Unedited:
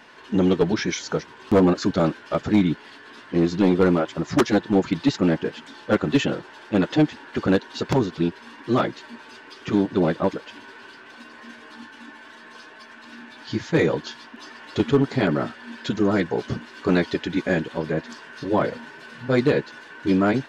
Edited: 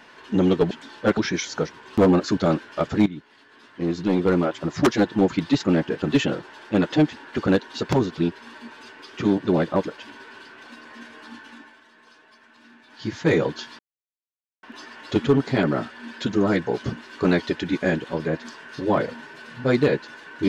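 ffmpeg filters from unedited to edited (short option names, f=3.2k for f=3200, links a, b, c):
-filter_complex "[0:a]asplit=9[a][b][c][d][e][f][g][h][i];[a]atrim=end=0.712[j];[b]atrim=start=5.558:end=6.022[k];[c]atrim=start=0.708:end=2.6,asetpts=PTS-STARTPTS,afade=t=out:st=1.888:d=0.004:c=hsin:silence=0.158489[l];[d]atrim=start=2.6:end=5.562,asetpts=PTS-STARTPTS,afade=t=in:d=1.65:silence=0.158489[m];[e]atrim=start=6.018:end=8.542[n];[f]atrim=start=9.018:end=12.29,asetpts=PTS-STARTPTS,afade=t=out:st=2.922:d=0.35:silence=0.334965[o];[g]atrim=start=12.29:end=13.34,asetpts=PTS-STARTPTS,volume=-9.5dB[p];[h]atrim=start=13.34:end=14.27,asetpts=PTS-STARTPTS,afade=t=in:d=0.35:silence=0.334965,afade=t=out:st=0.926:d=0.004:c=hsin,apad=pad_dur=0.84[q];[i]atrim=start=14.27,asetpts=PTS-STARTPTS,afade=t=in:d=0.004:c=hsin[r];[j][k]acrossfade=d=0.004:c1=hsin:c2=hsin[s];[l][m]concat=n=2:v=0:a=1[t];[s][t]acrossfade=d=0.004:c1=hsin:c2=hsin[u];[u][n]acrossfade=d=0.004:c1=hsin:c2=hsin[v];[o][p][q][r]concat=n=4:v=0:a=1[w];[v][w]acrossfade=d=0.004:c1=hsin:c2=hsin"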